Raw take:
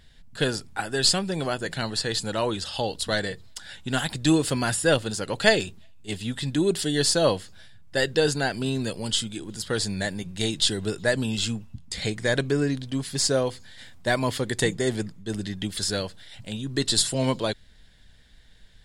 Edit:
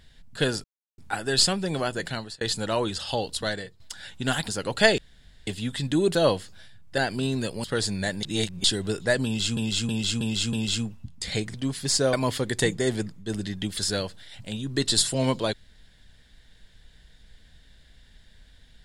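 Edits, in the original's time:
0.64 insert silence 0.34 s
1.71–2.07 fade out
2.72–3.46 fade out equal-power, to -14 dB
4.14–5.11 cut
5.61–6.1 room tone
6.78–7.15 cut
7.98–8.41 cut
9.07–9.62 cut
10.21–10.62 reverse
11.23–11.55 loop, 5 plays
12.24–12.84 cut
13.43–14.13 cut

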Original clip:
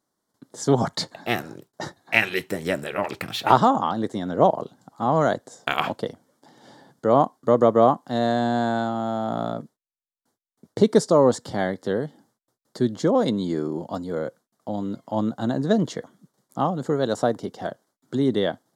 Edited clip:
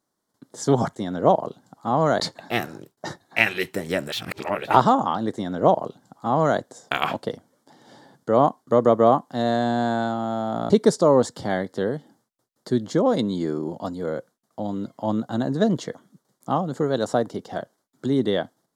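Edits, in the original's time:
2.88–3.41 reverse
4.11–5.35 copy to 0.96
9.46–10.79 cut

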